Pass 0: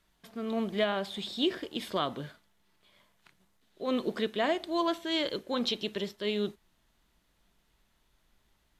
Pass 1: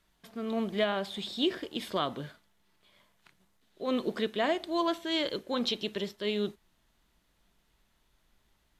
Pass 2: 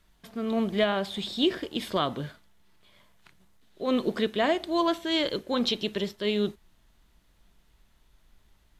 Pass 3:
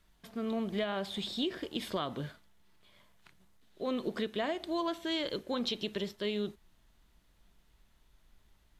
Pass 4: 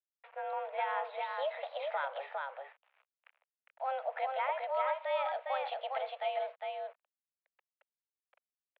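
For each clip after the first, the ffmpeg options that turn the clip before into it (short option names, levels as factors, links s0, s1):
-af anull
-af "lowshelf=f=110:g=8,volume=1.5"
-af "acompressor=threshold=0.0447:ratio=4,volume=0.668"
-af "aecho=1:1:406:0.668,aeval=exprs='val(0)*gte(abs(val(0)),0.00237)':c=same,highpass=f=280:t=q:w=0.5412,highpass=f=280:t=q:w=1.307,lowpass=f=2500:t=q:w=0.5176,lowpass=f=2500:t=q:w=0.7071,lowpass=f=2500:t=q:w=1.932,afreqshift=270"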